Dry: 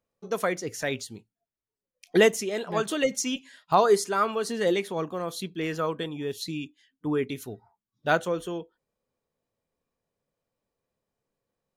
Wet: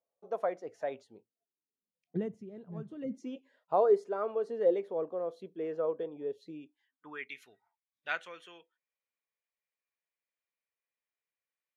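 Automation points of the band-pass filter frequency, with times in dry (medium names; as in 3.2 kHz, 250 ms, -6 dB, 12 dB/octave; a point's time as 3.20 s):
band-pass filter, Q 2.8
1.04 s 670 Hz
2.23 s 130 Hz
2.95 s 130 Hz
3.35 s 520 Hz
6.55 s 520 Hz
7.24 s 2.2 kHz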